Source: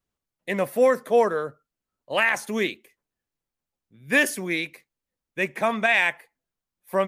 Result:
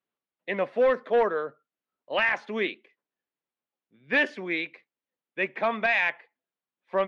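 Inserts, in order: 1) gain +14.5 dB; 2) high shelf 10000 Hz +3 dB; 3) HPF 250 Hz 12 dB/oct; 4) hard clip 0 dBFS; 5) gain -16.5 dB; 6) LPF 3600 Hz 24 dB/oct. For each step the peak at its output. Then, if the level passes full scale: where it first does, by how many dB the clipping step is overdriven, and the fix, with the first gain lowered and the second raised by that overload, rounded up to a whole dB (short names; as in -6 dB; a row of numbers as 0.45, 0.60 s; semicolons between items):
+7.0, +7.5, +7.5, 0.0, -16.5, -15.0 dBFS; step 1, 7.5 dB; step 1 +6.5 dB, step 5 -8.5 dB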